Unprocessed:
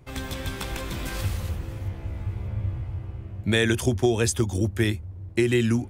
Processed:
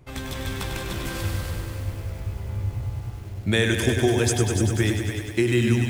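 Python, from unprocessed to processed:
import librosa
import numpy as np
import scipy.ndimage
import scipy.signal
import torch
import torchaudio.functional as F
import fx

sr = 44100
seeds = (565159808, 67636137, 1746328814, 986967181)

p1 = x + fx.echo_single(x, sr, ms=290, db=-9.5, dry=0)
y = fx.echo_crushed(p1, sr, ms=99, feedback_pct=80, bits=8, wet_db=-7)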